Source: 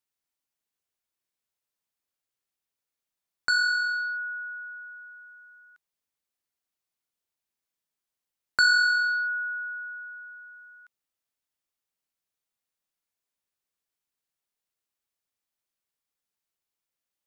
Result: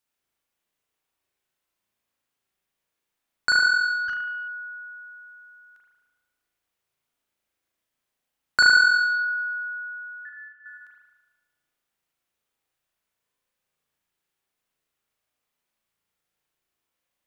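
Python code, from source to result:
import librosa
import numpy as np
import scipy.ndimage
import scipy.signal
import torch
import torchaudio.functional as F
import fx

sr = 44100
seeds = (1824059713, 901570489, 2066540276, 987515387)

y = fx.freq_invert(x, sr, carrier_hz=3200, at=(10.25, 10.66))
y = fx.rev_spring(y, sr, rt60_s=1.2, pass_ms=(36,), chirp_ms=75, drr_db=-4.0)
y = fx.doppler_dist(y, sr, depth_ms=0.54, at=(4.08, 4.48))
y = F.gain(torch.from_numpy(y), 3.5).numpy()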